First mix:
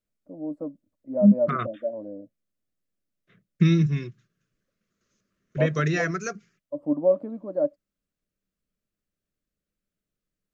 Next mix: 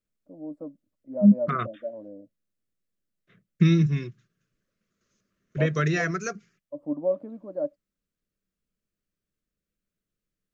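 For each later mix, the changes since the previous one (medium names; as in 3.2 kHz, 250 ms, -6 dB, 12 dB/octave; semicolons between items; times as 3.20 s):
first voice -5.0 dB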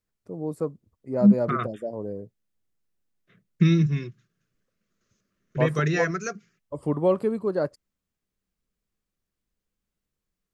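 first voice: remove two resonant band-passes 410 Hz, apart 1 oct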